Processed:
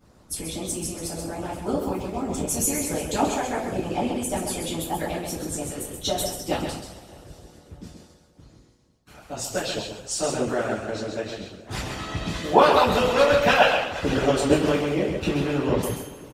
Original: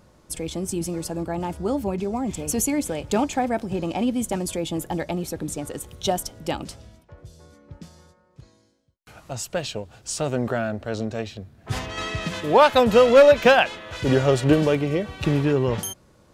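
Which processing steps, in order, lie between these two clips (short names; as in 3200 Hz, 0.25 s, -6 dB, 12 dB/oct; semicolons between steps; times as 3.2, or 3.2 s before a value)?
echo 0.132 s -5 dB; two-slope reverb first 0.51 s, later 3.4 s, from -20 dB, DRR -9 dB; harmonic-percussive split harmonic -15 dB; gain -4.5 dB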